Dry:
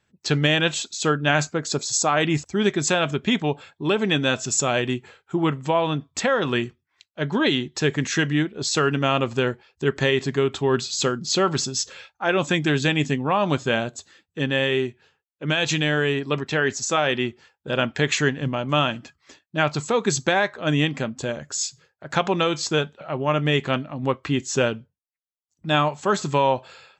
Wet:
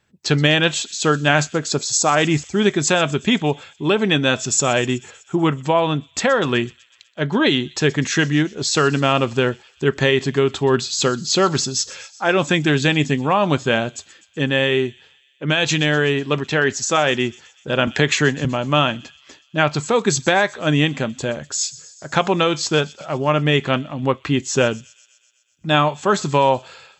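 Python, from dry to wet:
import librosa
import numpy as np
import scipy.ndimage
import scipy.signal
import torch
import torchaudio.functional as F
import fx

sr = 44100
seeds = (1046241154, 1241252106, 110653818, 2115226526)

p1 = x + fx.echo_wet_highpass(x, sr, ms=125, feedback_pct=66, hz=4100.0, wet_db=-16.5, dry=0)
p2 = fx.band_squash(p1, sr, depth_pct=40, at=(17.87, 18.45))
y = p2 * librosa.db_to_amplitude(4.0)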